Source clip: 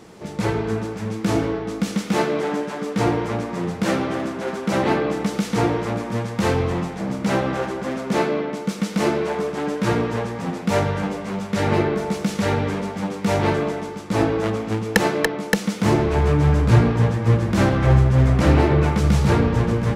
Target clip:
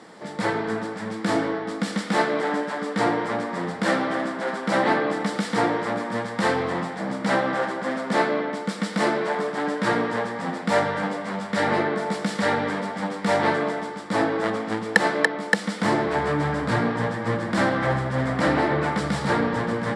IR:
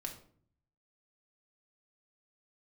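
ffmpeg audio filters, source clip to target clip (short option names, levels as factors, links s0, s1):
-filter_complex "[0:a]asplit=2[s0][s1];[s1]alimiter=limit=0.316:level=0:latency=1:release=305,volume=0.891[s2];[s0][s2]amix=inputs=2:normalize=0,highpass=260,equalizer=f=390:t=q:w=4:g=-9,equalizer=f=1800:t=q:w=4:g=5,equalizer=f=2600:t=q:w=4:g=-8,equalizer=f=6300:t=q:w=4:g=-10,lowpass=f=9200:w=0.5412,lowpass=f=9200:w=1.3066,volume=0.668"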